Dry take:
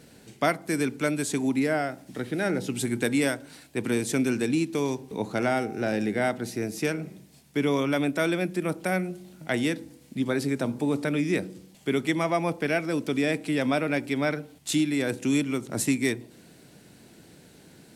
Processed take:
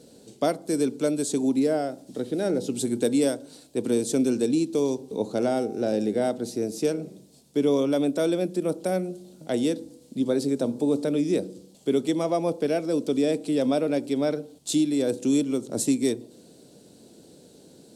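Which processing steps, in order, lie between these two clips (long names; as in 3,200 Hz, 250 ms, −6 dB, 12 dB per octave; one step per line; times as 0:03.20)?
octave-band graphic EQ 250/500/2,000/4,000/8,000 Hz +6/+11/−10/+7/+7 dB
level −6 dB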